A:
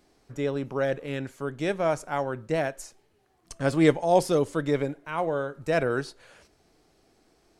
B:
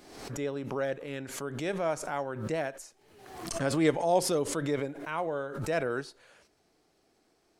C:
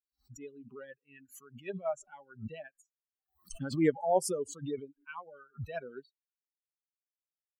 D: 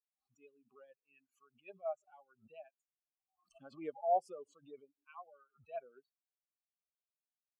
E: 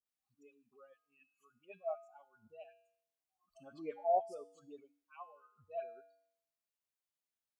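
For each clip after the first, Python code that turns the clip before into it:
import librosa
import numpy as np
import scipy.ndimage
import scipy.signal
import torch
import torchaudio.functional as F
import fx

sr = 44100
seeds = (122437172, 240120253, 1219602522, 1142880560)

y1 = fx.low_shelf(x, sr, hz=110.0, db=-9.5)
y1 = fx.pre_swell(y1, sr, db_per_s=59.0)
y1 = y1 * 10.0 ** (-5.0 / 20.0)
y2 = fx.bin_expand(y1, sr, power=3.0)
y2 = fx.env_phaser(y2, sr, low_hz=480.0, high_hz=3900.0, full_db=-31.5)
y2 = y2 * 10.0 ** (1.5 / 20.0)
y3 = fx.vowel_filter(y2, sr, vowel='a')
y3 = y3 * 10.0 ** (1.0 / 20.0)
y4 = fx.comb_fb(y3, sr, f0_hz=96.0, decay_s=0.72, harmonics='odd', damping=0.0, mix_pct=70)
y4 = fx.dispersion(y4, sr, late='highs', ms=60.0, hz=1400.0)
y4 = y4 * 10.0 ** (9.0 / 20.0)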